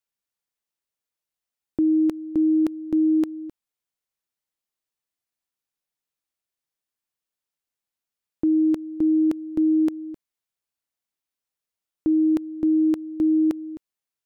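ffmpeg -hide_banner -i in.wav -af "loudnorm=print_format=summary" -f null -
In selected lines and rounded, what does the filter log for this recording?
Input Integrated:    -22.1 LUFS
Input True Peak:     -14.8 dBTP
Input LRA:             4.8 LU
Input Threshold:     -32.7 LUFS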